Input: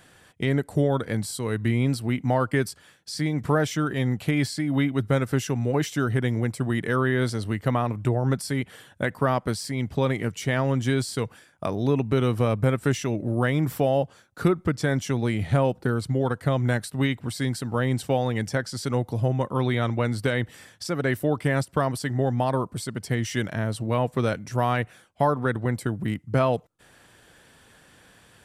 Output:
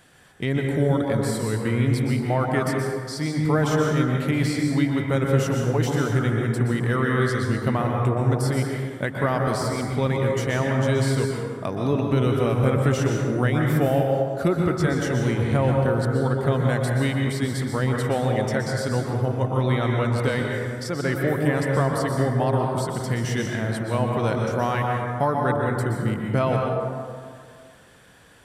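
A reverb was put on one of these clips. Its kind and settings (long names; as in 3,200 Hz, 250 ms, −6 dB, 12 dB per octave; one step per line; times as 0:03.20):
dense smooth reverb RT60 2 s, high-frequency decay 0.4×, pre-delay 110 ms, DRR 0 dB
level −1 dB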